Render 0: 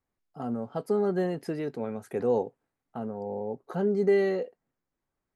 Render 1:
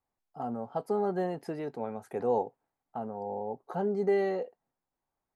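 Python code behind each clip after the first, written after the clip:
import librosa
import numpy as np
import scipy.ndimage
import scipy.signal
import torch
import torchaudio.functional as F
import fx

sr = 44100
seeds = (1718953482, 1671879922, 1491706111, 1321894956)

y = fx.peak_eq(x, sr, hz=820.0, db=10.0, octaves=0.87)
y = F.gain(torch.from_numpy(y), -5.5).numpy()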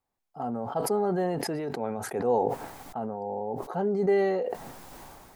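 y = fx.sustainer(x, sr, db_per_s=27.0)
y = F.gain(torch.from_numpy(y), 2.5).numpy()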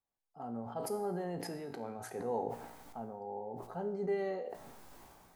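y = fx.comb_fb(x, sr, f0_hz=58.0, decay_s=0.78, harmonics='all', damping=0.0, mix_pct=70)
y = F.gain(torch.from_numpy(y), -3.0).numpy()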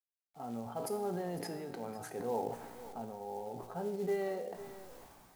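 y = x + 10.0 ** (-15.5 / 20.0) * np.pad(x, (int(504 * sr / 1000.0), 0))[:len(x)]
y = fx.quant_companded(y, sr, bits=6)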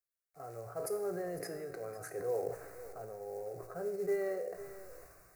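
y = fx.fixed_phaser(x, sr, hz=880.0, stages=6)
y = F.gain(torch.from_numpy(y), 2.5).numpy()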